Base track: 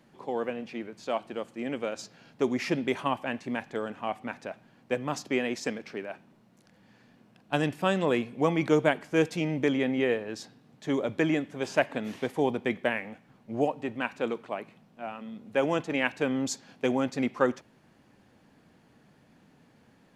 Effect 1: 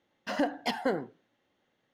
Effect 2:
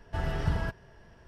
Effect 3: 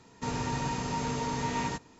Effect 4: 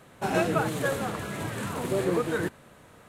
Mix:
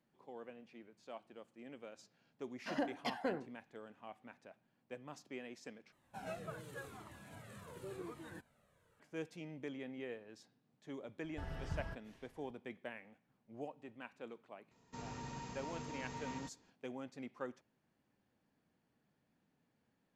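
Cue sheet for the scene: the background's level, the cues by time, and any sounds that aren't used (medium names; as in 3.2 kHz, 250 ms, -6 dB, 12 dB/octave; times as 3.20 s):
base track -19.5 dB
2.39 s: add 1 -9 dB + treble shelf 10 kHz -6 dB
5.92 s: replace with 4 -16.5 dB + Shepard-style flanger falling 0.89 Hz
11.24 s: add 2 -14 dB
14.71 s: add 3 -15 dB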